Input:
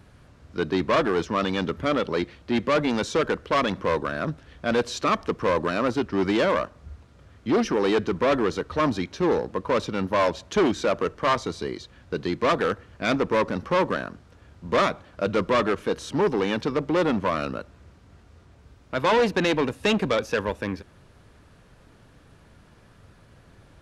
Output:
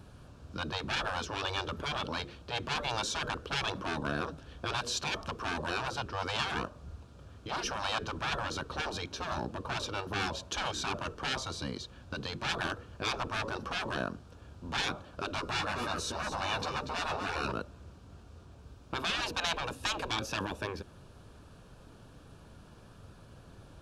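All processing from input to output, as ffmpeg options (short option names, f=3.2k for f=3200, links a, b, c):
-filter_complex "[0:a]asettb=1/sr,asplit=3[a][b][c];[a]atrim=end=15.374[d];[b]atrim=start=15.37:end=17.52,asetpts=PTS-STARTPTS,afade=t=in:d=0.004:c=qsin,afade=t=out:st=2.146:d=0.004:c=qsin,bandreject=f=3.2k:w=7.8,asplit=2[e][f];[f]adelay=12,volume=-4dB[g];[e][g]amix=inputs=2:normalize=0,atrim=end_sample=94815,aecho=1:1:238:0.316,atrim=end_sample=94815[h];[c]atrim=start=17.516[i];[d][h]acrossfade=d=0.004:c1=hsin:c2=qsin[j];[j][i]acrossfade=d=0.004:c1=qsin:c2=hsin,equalizer=f=2k:w=4.8:g=-13.5,afftfilt=real='re*lt(hypot(re,im),0.141)':imag='im*lt(hypot(re,im),0.141)':win_size=1024:overlap=0.75"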